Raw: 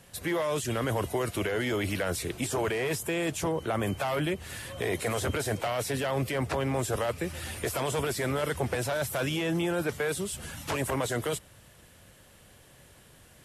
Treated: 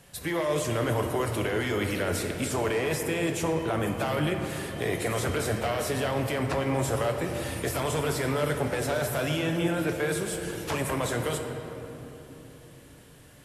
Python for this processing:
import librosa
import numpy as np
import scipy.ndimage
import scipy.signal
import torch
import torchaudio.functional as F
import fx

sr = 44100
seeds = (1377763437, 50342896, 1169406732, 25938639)

y = fx.room_shoebox(x, sr, seeds[0], volume_m3=210.0, walls='hard', distance_m=0.33)